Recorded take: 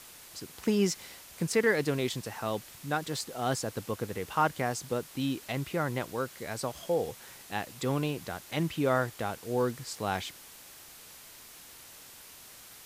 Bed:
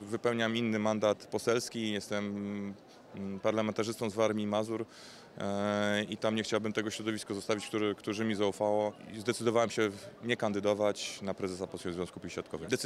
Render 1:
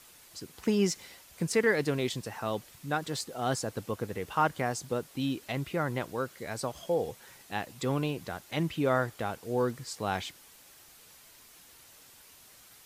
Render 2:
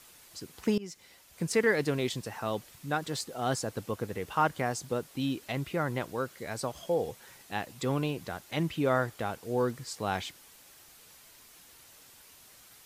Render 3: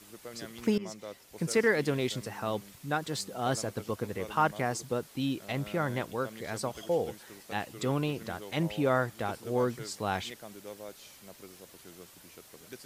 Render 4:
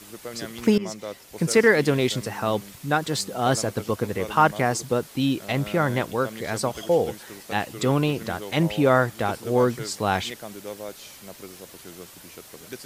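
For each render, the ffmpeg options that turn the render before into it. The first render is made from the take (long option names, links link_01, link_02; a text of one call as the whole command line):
ffmpeg -i in.wav -af "afftdn=noise_reduction=6:noise_floor=-51" out.wav
ffmpeg -i in.wav -filter_complex "[0:a]asplit=2[link_01][link_02];[link_01]atrim=end=0.78,asetpts=PTS-STARTPTS,afade=type=out:start_time=0.776:duration=0.004:curve=hsin:silence=0.0841395[link_03];[link_02]atrim=start=0.78,asetpts=PTS-STARTPTS,afade=type=in:duration=0.76:silence=0.0841395[link_04];[link_03][link_04]concat=n=2:v=0:a=1" out.wav
ffmpeg -i in.wav -i bed.wav -filter_complex "[1:a]volume=-15dB[link_01];[0:a][link_01]amix=inputs=2:normalize=0" out.wav
ffmpeg -i in.wav -af "volume=8.5dB" out.wav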